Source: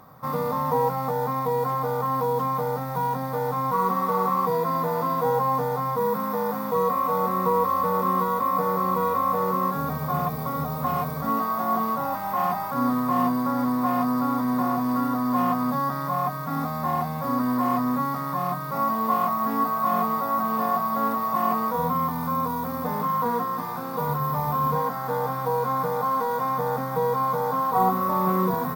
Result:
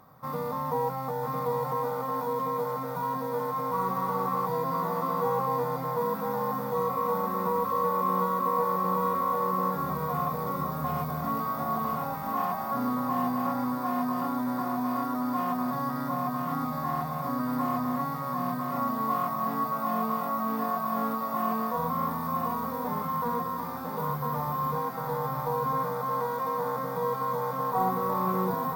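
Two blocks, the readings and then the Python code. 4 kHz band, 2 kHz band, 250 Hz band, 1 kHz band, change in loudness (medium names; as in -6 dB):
-4.5 dB, -4.5 dB, -5.0 dB, -4.5 dB, -4.5 dB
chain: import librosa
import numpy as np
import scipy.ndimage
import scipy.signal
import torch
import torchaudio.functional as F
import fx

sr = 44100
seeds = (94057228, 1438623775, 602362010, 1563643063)

y = x + 10.0 ** (-4.0 / 20.0) * np.pad(x, (int(1000 * sr / 1000.0), 0))[:len(x)]
y = F.gain(torch.from_numpy(y), -6.0).numpy()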